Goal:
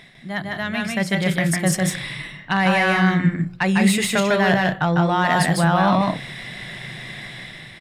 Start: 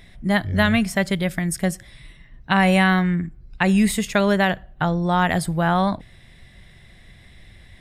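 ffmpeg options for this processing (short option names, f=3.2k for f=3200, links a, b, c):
-filter_complex "[0:a]areverse,acompressor=threshold=-30dB:ratio=6,areverse,bandreject=f=177.5:t=h:w=4,bandreject=f=355:t=h:w=4,bandreject=f=532.5:t=h:w=4,dynaudnorm=f=720:g=3:m=10dB,asplit=2[a][b];[b]highpass=f=720:p=1,volume=10dB,asoftclip=type=tanh:threshold=-11.5dB[c];[a][c]amix=inputs=2:normalize=0,lowpass=f=4.7k:p=1,volume=-6dB,lowshelf=f=100:t=q:w=3:g=-10.5,asplit=2[d][e];[e]aecho=0:1:151.6|183.7:0.794|0.316[f];[d][f]amix=inputs=2:normalize=0,volume=1.5dB"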